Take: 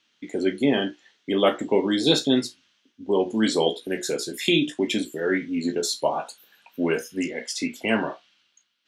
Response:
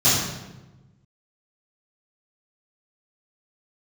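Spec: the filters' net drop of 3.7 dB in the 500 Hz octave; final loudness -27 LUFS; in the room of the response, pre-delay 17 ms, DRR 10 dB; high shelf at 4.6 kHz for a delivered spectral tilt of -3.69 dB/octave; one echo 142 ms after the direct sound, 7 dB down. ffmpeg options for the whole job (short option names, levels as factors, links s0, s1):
-filter_complex "[0:a]equalizer=f=500:t=o:g=-5,highshelf=f=4600:g=4,aecho=1:1:142:0.447,asplit=2[s0][s1];[1:a]atrim=start_sample=2205,adelay=17[s2];[s1][s2]afir=irnorm=-1:irlink=0,volume=0.0355[s3];[s0][s3]amix=inputs=2:normalize=0,volume=0.708"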